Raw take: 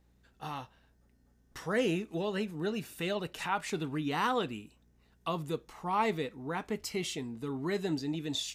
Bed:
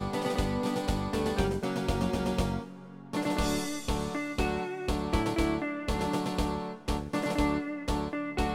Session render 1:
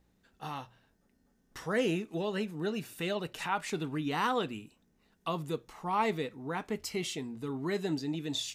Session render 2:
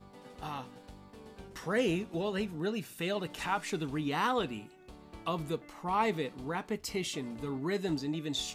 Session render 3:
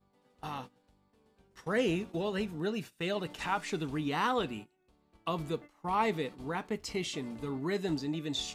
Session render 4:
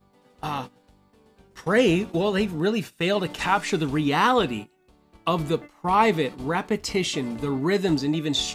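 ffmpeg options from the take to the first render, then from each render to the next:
-af "bandreject=f=60:t=h:w=4,bandreject=f=120:t=h:w=4"
-filter_complex "[1:a]volume=-21.5dB[a];[0:a][a]amix=inputs=2:normalize=0"
-filter_complex "[0:a]acrossover=split=8000[a][b];[b]acompressor=threshold=-58dB:ratio=4:attack=1:release=60[c];[a][c]amix=inputs=2:normalize=0,agate=range=-17dB:threshold=-43dB:ratio=16:detection=peak"
-af "volume=10.5dB"

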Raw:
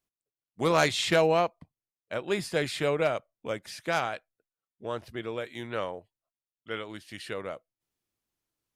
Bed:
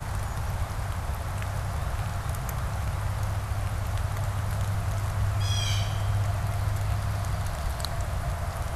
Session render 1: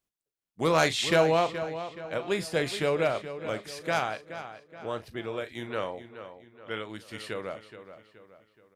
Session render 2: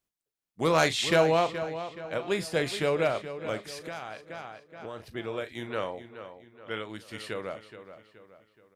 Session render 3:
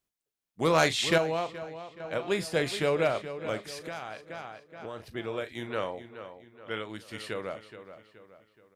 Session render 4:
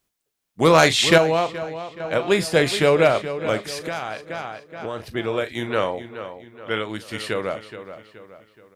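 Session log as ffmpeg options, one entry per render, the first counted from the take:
-filter_complex "[0:a]asplit=2[a][b];[b]adelay=37,volume=-13.5dB[c];[a][c]amix=inputs=2:normalize=0,asplit=2[d][e];[e]adelay=424,lowpass=f=4.4k:p=1,volume=-11.5dB,asplit=2[f][g];[g]adelay=424,lowpass=f=4.4k:p=1,volume=0.45,asplit=2[h][i];[i]adelay=424,lowpass=f=4.4k:p=1,volume=0.45,asplit=2[j][k];[k]adelay=424,lowpass=f=4.4k:p=1,volume=0.45,asplit=2[l][m];[m]adelay=424,lowpass=f=4.4k:p=1,volume=0.45[n];[f][h][j][l][n]amix=inputs=5:normalize=0[o];[d][o]amix=inputs=2:normalize=0"
-filter_complex "[0:a]asettb=1/sr,asplit=3[a][b][c];[a]atrim=end=3.724[d];[b]atrim=start=3.72:end=5.07,asetpts=PTS-STARTPTS,afade=t=in:d=0.004:c=qsin,afade=t=out:st=1.346:d=0.004:c=qsin,acompressor=threshold=-34dB:ratio=6:attack=3.2:release=140:knee=1:detection=peak[e];[c]atrim=start=5.066[f];[d][e]acrossfade=d=0.004:c1=hsin:c2=qsin[g];[g][f]acrossfade=d=0.004:c1=qsin:c2=hsin"
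-filter_complex "[0:a]asplit=3[a][b][c];[a]atrim=end=1.182[d];[b]atrim=start=1.178:end=2.002,asetpts=PTS-STARTPTS,volume=-6.5dB[e];[c]atrim=start=1.998[f];[d][e]acrossfade=d=0.004:c1=hsin:c2=hsin[g];[g][f]acrossfade=d=0.004:c1=hsin:c2=hsin"
-af "volume=10dB,alimiter=limit=-3dB:level=0:latency=1"

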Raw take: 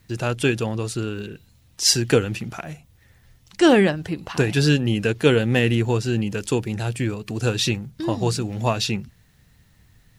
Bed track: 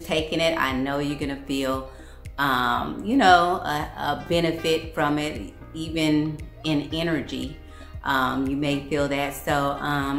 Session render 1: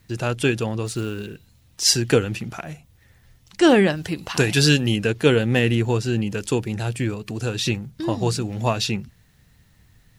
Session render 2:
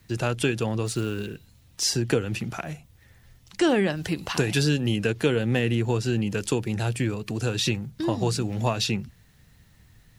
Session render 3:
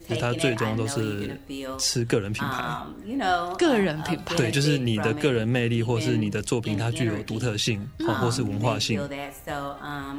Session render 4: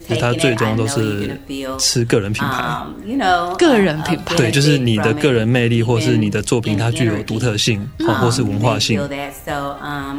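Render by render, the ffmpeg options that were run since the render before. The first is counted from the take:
-filter_complex "[0:a]asettb=1/sr,asplit=3[a][b][c];[a]atrim=end=0.864[d];[b]atrim=start=0.86:end=1.84,asetpts=PTS-STARTPTS,afade=t=in:d=0.004:c=qsin,afade=t=out:st=0.976:d=0.004:c=qsin,acrusher=bits=6:mode=log:mix=0:aa=0.000001[e];[c]atrim=start=1.836[f];[d][e]acrossfade=d=0.004:c1=hsin:c2=qsin[g];[g][f]acrossfade=d=0.004:c1=qsin:c2=hsin,asettb=1/sr,asplit=3[h][i][j];[h]atrim=end=3.904[k];[i]atrim=start=3.9:end=4.96,asetpts=PTS-STARTPTS,afade=t=in:d=0.004:c=qsin,afade=t=out:st=1.056:d=0.004:c=qsin,highshelf=f=2.3k:g=8.5[l];[j]atrim=start=4.956[m];[k][l]acrossfade=d=0.004:c1=hsin:c2=qsin[n];[n][m]acrossfade=d=0.004:c1=qsin:c2=hsin,asettb=1/sr,asplit=3[o][p][q];[o]atrim=end=7.254[r];[p]atrim=start=7.25:end=7.66,asetpts=PTS-STARTPTS,afade=t=in:d=0.004:c=qsin,afade=t=out:st=0.406:d=0.004:c=qsin,acompressor=threshold=-26dB:ratio=1.5:attack=3.2:release=140:knee=1:detection=peak[s];[q]atrim=start=7.656[t];[r][s]acrossfade=d=0.004:c1=hsin:c2=qsin[u];[u][t]acrossfade=d=0.004:c1=qsin:c2=hsin"
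-filter_complex "[0:a]acrossover=split=100|1200[a][b][c];[c]alimiter=limit=-12.5dB:level=0:latency=1:release=430[d];[a][b][d]amix=inputs=3:normalize=0,acompressor=threshold=-21dB:ratio=2.5"
-filter_complex "[1:a]volume=-8.5dB[a];[0:a][a]amix=inputs=2:normalize=0"
-af "volume=9dB,alimiter=limit=-2dB:level=0:latency=1"

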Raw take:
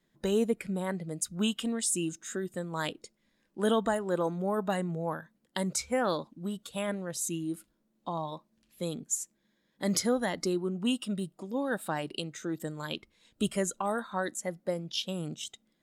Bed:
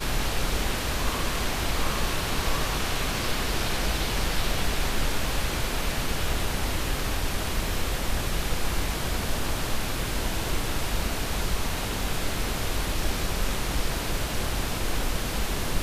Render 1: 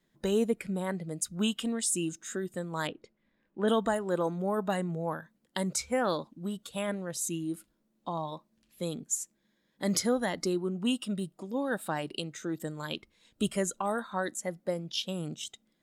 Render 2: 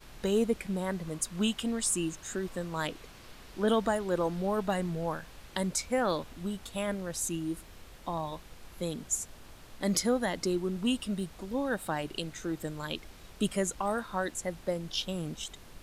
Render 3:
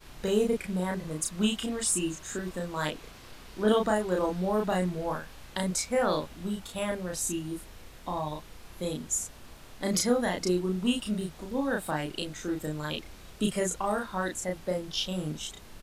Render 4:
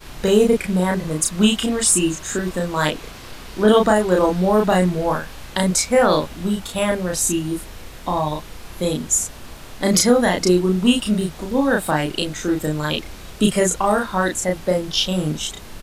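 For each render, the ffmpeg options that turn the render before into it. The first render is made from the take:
-filter_complex "[0:a]asettb=1/sr,asplit=3[a][b][c];[a]atrim=end=2.874[d];[b]atrim=start=2.87:end=3.68,asetpts=PTS-STARTPTS,afade=t=in:d=0.004:c=qsin,afade=t=out:st=0.806:d=0.004:c=qsin,lowpass=2.5k[e];[c]atrim=start=3.676[f];[d][e]acrossfade=d=0.004:c1=hsin:c2=qsin[g];[g][f]acrossfade=d=0.004:c1=qsin:c2=hsin"
-filter_complex "[1:a]volume=-23.5dB[a];[0:a][a]amix=inputs=2:normalize=0"
-filter_complex "[0:a]asplit=2[a][b];[b]adelay=33,volume=-2dB[c];[a][c]amix=inputs=2:normalize=0"
-af "volume=11.5dB,alimiter=limit=-3dB:level=0:latency=1"

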